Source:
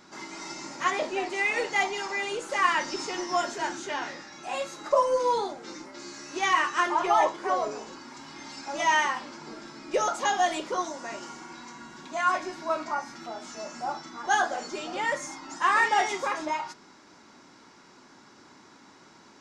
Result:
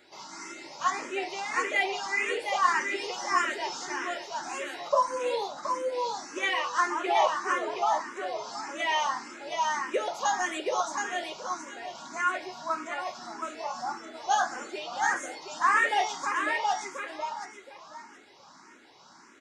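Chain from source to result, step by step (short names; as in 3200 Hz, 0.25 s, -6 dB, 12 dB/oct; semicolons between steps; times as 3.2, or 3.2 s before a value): low shelf 250 Hz -9.5 dB; feedback echo 0.722 s, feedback 25%, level -3.5 dB; endless phaser +1.7 Hz; gain +1 dB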